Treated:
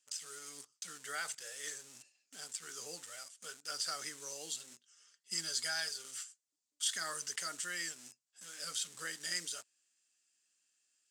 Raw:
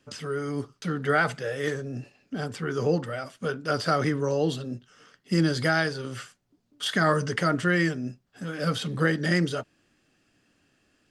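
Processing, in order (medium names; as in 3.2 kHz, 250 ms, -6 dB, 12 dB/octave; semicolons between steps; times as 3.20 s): 4.69–6.11 s: comb 5 ms, depth 53%; in parallel at -6 dB: bit crusher 6-bit; on the sum: band-pass filter 7.7 kHz, Q 2.7; trim +3.5 dB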